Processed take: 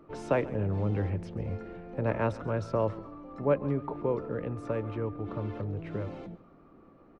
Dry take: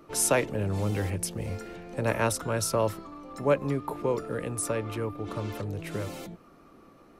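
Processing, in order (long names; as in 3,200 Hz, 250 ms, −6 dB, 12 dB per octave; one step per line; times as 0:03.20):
head-to-tape spacing loss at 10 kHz 39 dB
repeating echo 136 ms, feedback 42%, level −19 dB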